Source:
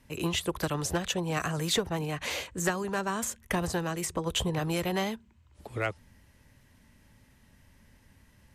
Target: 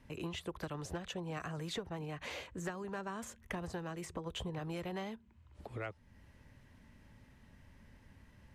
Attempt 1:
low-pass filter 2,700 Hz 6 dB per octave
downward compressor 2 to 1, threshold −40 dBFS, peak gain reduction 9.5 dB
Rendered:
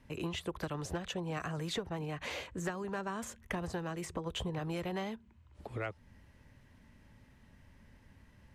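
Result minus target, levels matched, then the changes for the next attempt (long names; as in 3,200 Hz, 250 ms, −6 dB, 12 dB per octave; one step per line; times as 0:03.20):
downward compressor: peak gain reduction −3.5 dB
change: downward compressor 2 to 1, threshold −47 dBFS, peak gain reduction 13 dB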